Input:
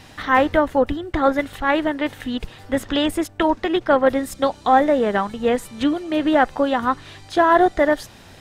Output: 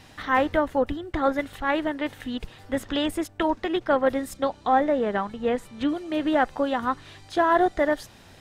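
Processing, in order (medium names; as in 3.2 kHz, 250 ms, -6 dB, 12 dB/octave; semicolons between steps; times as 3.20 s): 4.37–5.89 s: treble shelf 5.7 kHz -10 dB; trim -5.5 dB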